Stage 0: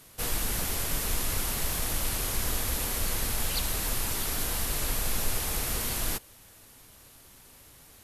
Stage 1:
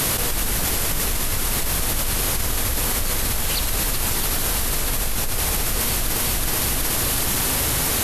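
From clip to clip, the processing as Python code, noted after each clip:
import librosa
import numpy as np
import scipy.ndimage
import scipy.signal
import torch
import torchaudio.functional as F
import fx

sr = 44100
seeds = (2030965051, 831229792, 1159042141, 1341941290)

y = fx.echo_feedback(x, sr, ms=372, feedback_pct=38, wet_db=-10.5)
y = fx.env_flatten(y, sr, amount_pct=100)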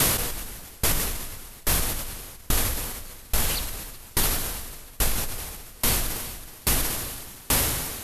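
y = fx.tremolo_decay(x, sr, direction='decaying', hz=1.2, depth_db=29)
y = y * librosa.db_to_amplitude(2.5)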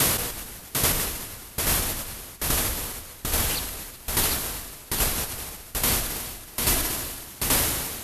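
y = fx.highpass(x, sr, hz=59.0, slope=6)
y = y + 10.0 ** (-4.0 / 20.0) * np.pad(y, (int(747 * sr / 1000.0), 0))[:len(y)]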